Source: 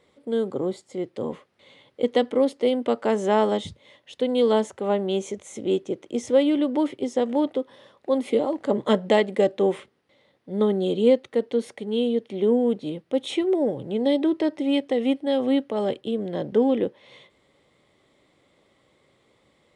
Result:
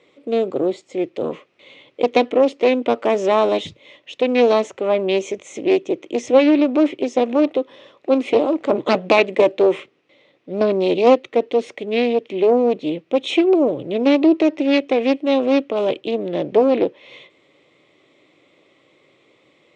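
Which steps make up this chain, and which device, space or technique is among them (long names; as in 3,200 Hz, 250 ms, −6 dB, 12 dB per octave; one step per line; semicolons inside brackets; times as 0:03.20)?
full-range speaker at full volume (highs frequency-modulated by the lows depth 0.54 ms; loudspeaker in its box 160–6,800 Hz, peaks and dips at 210 Hz −7 dB, 320 Hz +4 dB, 860 Hz −5 dB, 1,600 Hz −5 dB, 2,500 Hz +8 dB, 4,700 Hz −5 dB)
level +6.5 dB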